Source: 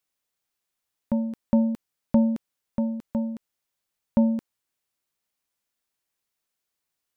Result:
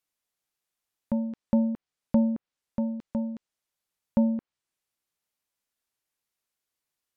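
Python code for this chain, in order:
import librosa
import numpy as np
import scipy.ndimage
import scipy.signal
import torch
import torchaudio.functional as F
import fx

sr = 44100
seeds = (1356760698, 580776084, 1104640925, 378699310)

y = fx.env_lowpass_down(x, sr, base_hz=1200.0, full_db=-19.5)
y = F.gain(torch.from_numpy(y), -2.5).numpy()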